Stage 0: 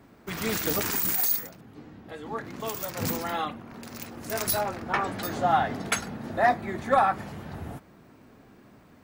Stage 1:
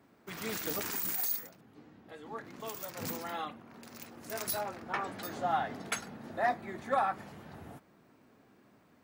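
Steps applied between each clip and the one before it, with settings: high-pass 160 Hz 6 dB/octave; trim -8 dB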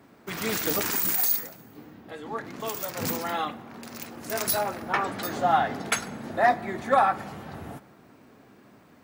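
plate-style reverb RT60 1.7 s, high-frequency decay 0.7×, DRR 18 dB; trim +9 dB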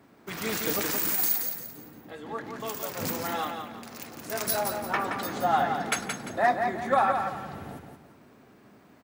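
feedback delay 173 ms, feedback 33%, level -6 dB; trim -2.5 dB

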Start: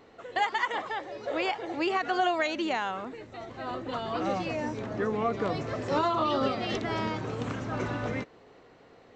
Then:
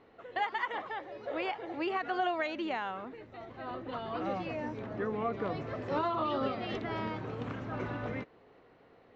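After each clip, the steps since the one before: low-pass 3.3 kHz 12 dB/octave; trim -5 dB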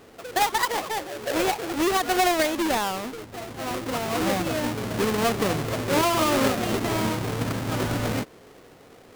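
square wave that keeps the level; trim +6.5 dB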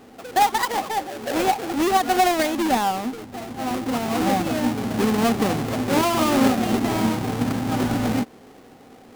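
small resonant body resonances 240/780 Hz, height 10 dB, ringing for 45 ms

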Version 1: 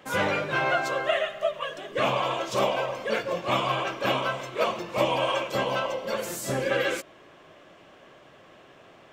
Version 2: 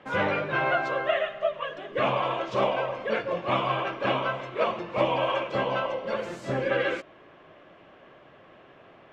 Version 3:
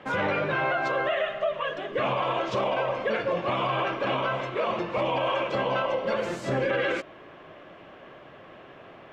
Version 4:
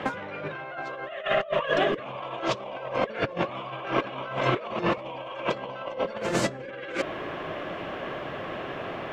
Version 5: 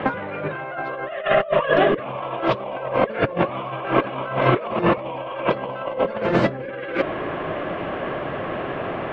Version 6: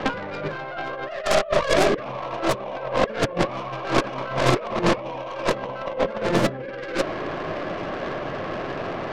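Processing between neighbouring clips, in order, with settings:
low-pass 2.8 kHz 12 dB/octave
peak limiter -23 dBFS, peak gain reduction 11 dB; trim +5 dB
compressor with a negative ratio -34 dBFS, ratio -0.5; trim +5.5 dB
distance through air 360 m; trim +8.5 dB
tracing distortion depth 0.41 ms; trim -2 dB

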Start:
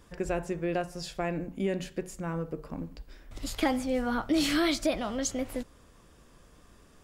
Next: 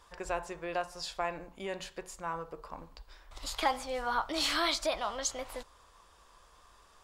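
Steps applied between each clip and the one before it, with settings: graphic EQ 125/250/1000/4000/8000 Hz -9/-11/+12/+7/+3 dB; trim -5.5 dB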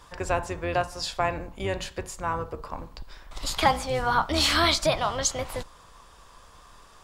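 octave divider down 2 oct, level +2 dB; trim +8 dB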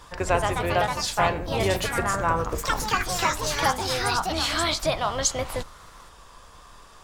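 ever faster or slower copies 174 ms, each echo +3 st, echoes 3; gain riding within 5 dB 0.5 s

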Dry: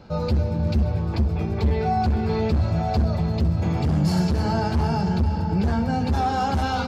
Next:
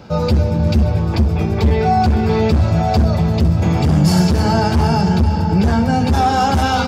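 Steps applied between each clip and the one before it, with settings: high-pass 58 Hz; treble shelf 4.2 kHz +6 dB; band-stop 4.2 kHz, Q 15; trim +8 dB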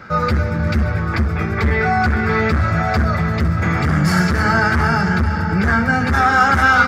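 high-order bell 1.6 kHz +16 dB 1.1 oct; trim -3.5 dB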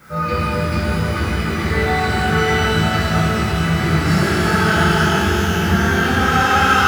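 word length cut 8-bit, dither triangular; pitch-shifted reverb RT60 3 s, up +12 st, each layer -8 dB, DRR -10.5 dB; trim -11 dB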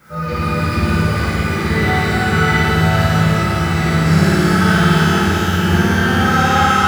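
level rider gain up to 3.5 dB; on a send: flutter echo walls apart 9.6 m, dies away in 1.2 s; on the sum: trim -3 dB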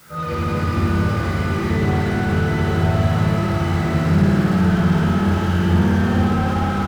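doubling 21 ms -5.5 dB; word length cut 8-bit, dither triangular; slew-rate limiter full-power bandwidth 95 Hz; trim -2.5 dB

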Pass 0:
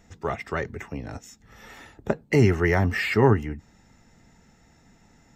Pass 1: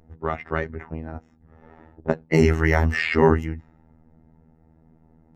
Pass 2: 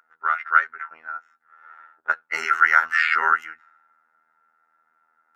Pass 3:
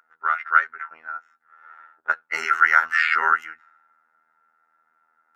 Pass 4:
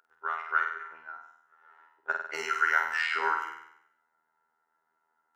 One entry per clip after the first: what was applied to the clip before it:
level-controlled noise filter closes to 640 Hz, open at -18 dBFS; robot voice 80.1 Hz; trim +4.5 dB
resonant high-pass 1.4 kHz, resonance Q 16; trim -2 dB
no audible change
graphic EQ with 31 bands 200 Hz -6 dB, 400 Hz +9 dB, 1.25 kHz -7 dB, 2 kHz -10 dB; on a send: flutter echo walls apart 8.4 m, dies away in 0.73 s; on the sum: trim -5 dB

